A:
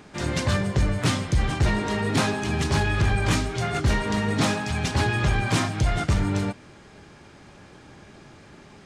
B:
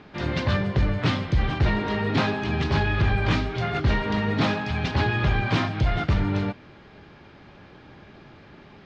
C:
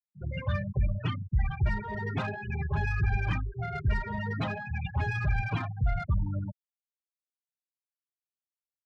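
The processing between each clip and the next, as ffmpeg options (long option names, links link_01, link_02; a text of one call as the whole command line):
ffmpeg -i in.wav -af "lowpass=frequency=4300:width=0.5412,lowpass=frequency=4300:width=1.3066" out.wav
ffmpeg -i in.wav -filter_complex "[0:a]equalizer=frequency=270:width_type=o:width=1.6:gain=-9.5,afftfilt=real='re*gte(hypot(re,im),0.1)':imag='im*gte(hypot(re,im),0.1)':win_size=1024:overlap=0.75,acrossover=split=150|550|2500[link_01][link_02][link_03][link_04];[link_03]asoftclip=type=tanh:threshold=-30.5dB[link_05];[link_01][link_02][link_05][link_04]amix=inputs=4:normalize=0,volume=-3dB" out.wav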